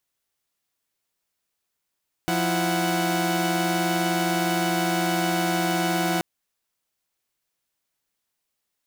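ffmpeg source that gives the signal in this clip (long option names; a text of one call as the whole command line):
ffmpeg -f lavfi -i "aevalsrc='0.0668*((2*mod(174.61*t,1)-1)+(2*mod(329.63*t,1)-1)+(2*mod(739.99*t,1)-1))':duration=3.93:sample_rate=44100" out.wav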